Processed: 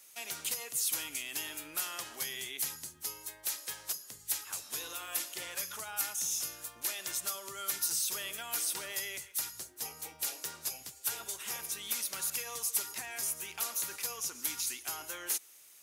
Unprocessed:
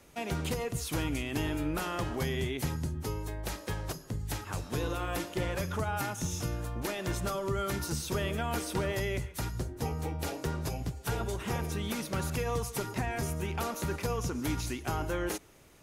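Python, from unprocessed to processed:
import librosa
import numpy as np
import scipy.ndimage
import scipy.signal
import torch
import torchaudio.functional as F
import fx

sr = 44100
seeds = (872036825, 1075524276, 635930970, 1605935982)

y = np.diff(x, prepend=0.0)
y = F.gain(torch.from_numpy(y), 7.5).numpy()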